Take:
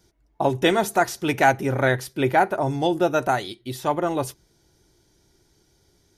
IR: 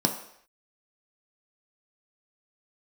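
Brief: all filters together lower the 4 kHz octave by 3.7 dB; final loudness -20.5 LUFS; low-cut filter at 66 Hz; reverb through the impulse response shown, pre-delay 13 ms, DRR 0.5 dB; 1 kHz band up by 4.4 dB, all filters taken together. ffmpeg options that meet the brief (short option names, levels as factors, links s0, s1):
-filter_complex "[0:a]highpass=66,equalizer=f=1000:t=o:g=6.5,equalizer=f=4000:t=o:g=-5,asplit=2[s0][s1];[1:a]atrim=start_sample=2205,adelay=13[s2];[s1][s2]afir=irnorm=-1:irlink=0,volume=0.282[s3];[s0][s3]amix=inputs=2:normalize=0,volume=0.562"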